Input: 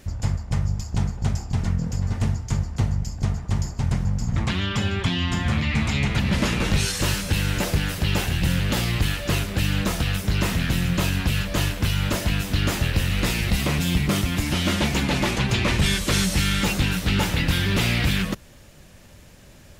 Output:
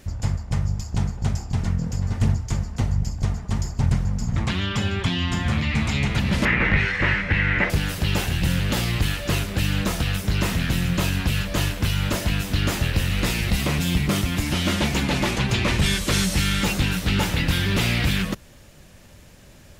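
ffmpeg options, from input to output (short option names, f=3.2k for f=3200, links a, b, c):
-filter_complex "[0:a]asplit=3[a][b][c];[a]afade=t=out:st=2.19:d=0.02[d];[b]aphaser=in_gain=1:out_gain=1:delay=4.8:decay=0.31:speed=1.3:type=sinusoidal,afade=t=in:st=2.19:d=0.02,afade=t=out:st=4.25:d=0.02[e];[c]afade=t=in:st=4.25:d=0.02[f];[d][e][f]amix=inputs=3:normalize=0,asettb=1/sr,asplit=3[g][h][i];[g]atrim=end=6.454[j];[h]atrim=start=6.45:end=7.7,asetpts=PTS-STARTPTS,afade=t=in:d=0.004:c=qsin,afade=t=out:st=1.246:d=0.004:c=qsin,lowpass=f=2k:t=q:w=5.9[k];[i]atrim=start=7.696[l];[j][k]acrossfade=d=0.004:c1=hsin:c2=qsin[m];[m][l]acrossfade=d=0.004:c1=qsin:c2=hsin"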